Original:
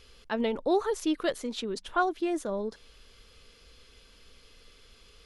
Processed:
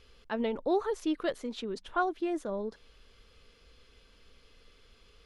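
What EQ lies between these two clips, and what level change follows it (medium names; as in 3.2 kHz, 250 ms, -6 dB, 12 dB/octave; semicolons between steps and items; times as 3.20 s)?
treble shelf 4.7 kHz -9 dB; -2.5 dB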